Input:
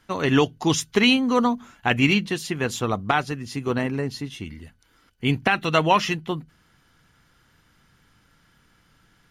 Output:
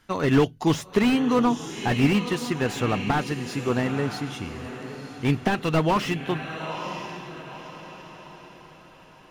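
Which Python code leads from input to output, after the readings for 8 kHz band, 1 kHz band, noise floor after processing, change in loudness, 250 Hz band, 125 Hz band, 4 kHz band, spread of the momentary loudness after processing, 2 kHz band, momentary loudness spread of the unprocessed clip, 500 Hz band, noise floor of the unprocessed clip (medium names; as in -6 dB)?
-5.5 dB, -2.5 dB, -50 dBFS, -2.0 dB, +0.5 dB, +1.0 dB, -6.5 dB, 18 LU, -5.0 dB, 12 LU, -0.5 dB, -62 dBFS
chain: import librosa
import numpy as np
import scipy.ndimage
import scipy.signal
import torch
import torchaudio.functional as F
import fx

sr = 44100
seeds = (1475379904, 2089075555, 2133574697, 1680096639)

y = fx.echo_diffused(x, sr, ms=937, feedback_pct=42, wet_db=-12)
y = fx.slew_limit(y, sr, full_power_hz=100.0)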